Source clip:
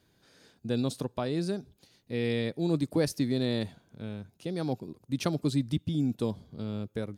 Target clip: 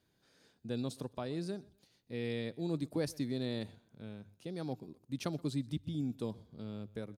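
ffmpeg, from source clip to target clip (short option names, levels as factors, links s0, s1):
-af "bandreject=f=50:t=h:w=6,bandreject=f=100:t=h:w=6,aecho=1:1:125|250:0.0668|0.0174,volume=0.398"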